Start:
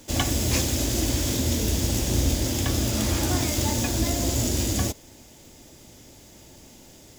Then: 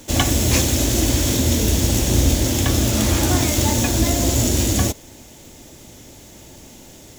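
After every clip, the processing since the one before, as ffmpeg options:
ffmpeg -i in.wav -af "bandreject=frequency=4900:width=14,volume=6.5dB" out.wav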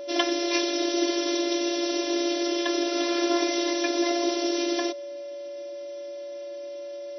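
ffmpeg -i in.wav -af "afftfilt=real='hypot(re,im)*cos(PI*b)':imag='0':win_size=512:overlap=0.75,afftfilt=real='re*between(b*sr/4096,270,6100)':imag='im*between(b*sr/4096,270,6100)':win_size=4096:overlap=0.75,aeval=exprs='val(0)+0.0224*sin(2*PI*570*n/s)':channel_layout=same,volume=-1dB" out.wav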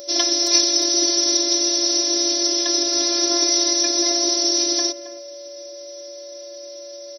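ffmpeg -i in.wav -filter_complex "[0:a]asplit=2[link_01][link_02];[link_02]adelay=270,highpass=300,lowpass=3400,asoftclip=type=hard:threshold=-14dB,volume=-13dB[link_03];[link_01][link_03]amix=inputs=2:normalize=0,aexciter=amount=11:drive=4.3:freq=4300,volume=-1.5dB" out.wav

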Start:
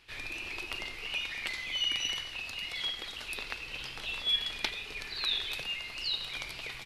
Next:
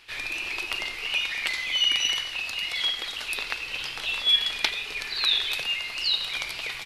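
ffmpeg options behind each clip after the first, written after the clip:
ffmpeg -i in.wav -af "lowshelf=frequency=400:gain=-9.5,volume=8.5dB" out.wav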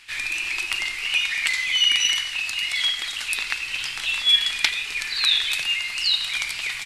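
ffmpeg -i in.wav -af "equalizer=frequency=500:width_type=o:width=1:gain=-9,equalizer=frequency=2000:width_type=o:width=1:gain=6,equalizer=frequency=8000:width_type=o:width=1:gain=11" out.wav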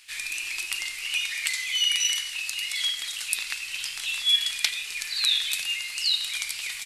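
ffmpeg -i in.wav -af "crystalizer=i=4:c=0,volume=-11.5dB" out.wav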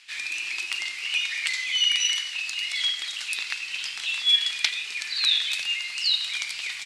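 ffmpeg -i in.wav -af "highpass=150,lowpass=5600,volume=2dB" out.wav

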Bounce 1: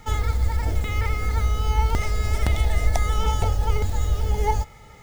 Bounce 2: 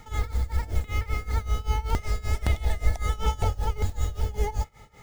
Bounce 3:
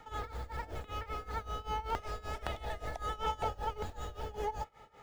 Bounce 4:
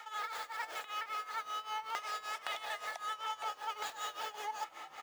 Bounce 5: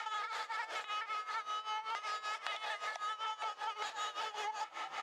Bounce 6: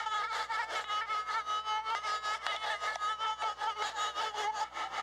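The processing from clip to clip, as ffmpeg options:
ffmpeg -i in.wav -af "tremolo=f=5.2:d=0.89,volume=-1dB" out.wav
ffmpeg -i in.wav -filter_complex "[0:a]bass=frequency=250:gain=-13,treble=frequency=4000:gain=-13,bandreject=frequency=2100:width=8.3,acrossover=split=440|2600[link_01][link_02][link_03];[link_01]asoftclip=type=hard:threshold=-36dB[link_04];[link_04][link_02][link_03]amix=inputs=3:normalize=0,volume=-1.5dB" out.wav
ffmpeg -i in.wav -filter_complex "[0:a]highpass=1200,areverse,acompressor=threshold=-50dB:ratio=6,areverse,asplit=6[link_01][link_02][link_03][link_04][link_05][link_06];[link_02]adelay=369,afreqshift=-89,volume=-18dB[link_07];[link_03]adelay=738,afreqshift=-178,volume=-22.4dB[link_08];[link_04]adelay=1107,afreqshift=-267,volume=-26.9dB[link_09];[link_05]adelay=1476,afreqshift=-356,volume=-31.3dB[link_10];[link_06]adelay=1845,afreqshift=-445,volume=-35.7dB[link_11];[link_01][link_07][link_08][link_09][link_10][link_11]amix=inputs=6:normalize=0,volume=13dB" out.wav
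ffmpeg -i in.wav -af "lowpass=6300,lowshelf=frequency=360:gain=-7,acompressor=threshold=-47dB:ratio=6,volume=9.5dB" out.wav
ffmpeg -i in.wav -af "bandreject=frequency=2500:width=7.5,aeval=exprs='val(0)+0.000251*(sin(2*PI*60*n/s)+sin(2*PI*2*60*n/s)/2+sin(2*PI*3*60*n/s)/3+sin(2*PI*4*60*n/s)/4+sin(2*PI*5*60*n/s)/5)':channel_layout=same,volume=5.5dB" out.wav

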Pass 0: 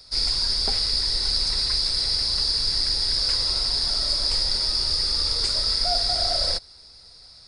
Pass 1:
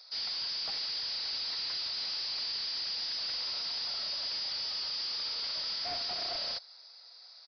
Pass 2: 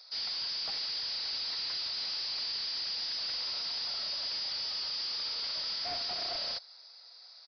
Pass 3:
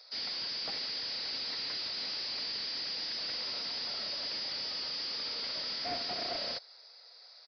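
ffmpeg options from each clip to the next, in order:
ffmpeg -i in.wav -af "highpass=frequency=590:width=0.5412,highpass=frequency=590:width=1.3066,aresample=11025,asoftclip=type=tanh:threshold=-29dB,aresample=44100,volume=-4dB" out.wav
ffmpeg -i in.wav -af anull out.wav
ffmpeg -i in.wav -af "equalizer=frequency=125:width_type=o:width=1:gain=4,equalizer=frequency=250:width_type=o:width=1:gain=10,equalizer=frequency=500:width_type=o:width=1:gain=7,equalizer=frequency=2000:width_type=o:width=1:gain=5,volume=-2.5dB" out.wav

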